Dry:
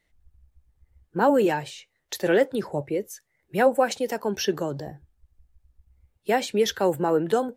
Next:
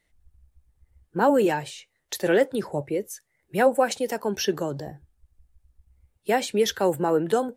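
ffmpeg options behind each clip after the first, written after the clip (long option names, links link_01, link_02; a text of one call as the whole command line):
ffmpeg -i in.wav -af "equalizer=frequency=9500:width=1.6:gain=5" out.wav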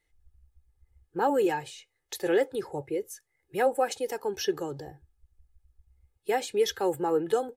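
ffmpeg -i in.wav -af "aecho=1:1:2.4:0.62,volume=-6.5dB" out.wav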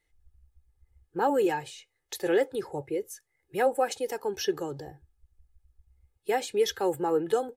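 ffmpeg -i in.wav -af anull out.wav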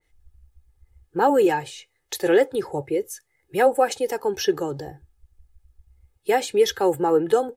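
ffmpeg -i in.wav -af "adynamicequalizer=threshold=0.00891:dfrequency=2000:dqfactor=0.7:tfrequency=2000:tqfactor=0.7:attack=5:release=100:ratio=0.375:range=1.5:mode=cutabove:tftype=highshelf,volume=7dB" out.wav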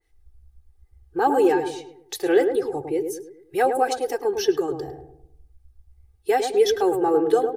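ffmpeg -i in.wav -filter_complex "[0:a]aecho=1:1:2.6:0.65,asplit=2[link_01][link_02];[link_02]adelay=105,lowpass=frequency=830:poles=1,volume=-4.5dB,asplit=2[link_03][link_04];[link_04]adelay=105,lowpass=frequency=830:poles=1,volume=0.49,asplit=2[link_05][link_06];[link_06]adelay=105,lowpass=frequency=830:poles=1,volume=0.49,asplit=2[link_07][link_08];[link_08]adelay=105,lowpass=frequency=830:poles=1,volume=0.49,asplit=2[link_09][link_10];[link_10]adelay=105,lowpass=frequency=830:poles=1,volume=0.49,asplit=2[link_11][link_12];[link_12]adelay=105,lowpass=frequency=830:poles=1,volume=0.49[link_13];[link_03][link_05][link_07][link_09][link_11][link_13]amix=inputs=6:normalize=0[link_14];[link_01][link_14]amix=inputs=2:normalize=0,volume=-3.5dB" out.wav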